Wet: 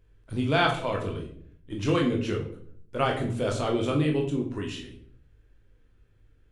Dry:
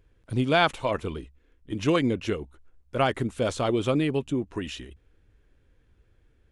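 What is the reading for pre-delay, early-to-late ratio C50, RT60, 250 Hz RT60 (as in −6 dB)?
20 ms, 8.0 dB, 0.60 s, 0.80 s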